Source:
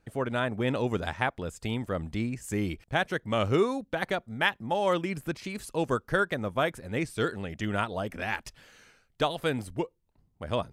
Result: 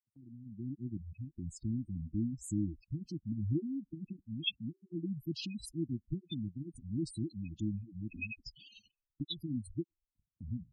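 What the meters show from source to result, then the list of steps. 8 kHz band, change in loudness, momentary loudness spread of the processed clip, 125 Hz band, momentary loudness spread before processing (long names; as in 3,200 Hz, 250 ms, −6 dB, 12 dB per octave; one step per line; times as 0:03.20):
−6.5 dB, −9.5 dB, 10 LU, −4.5 dB, 8 LU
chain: fade in at the beginning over 1.50 s
reverb reduction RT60 0.52 s
gate on every frequency bin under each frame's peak −10 dB strong
linear-phase brick-wall band-stop 350–2,500 Hz
flat-topped bell 2,400 Hz +11.5 dB 2.3 octaves
noise gate −60 dBFS, range −19 dB
level −2 dB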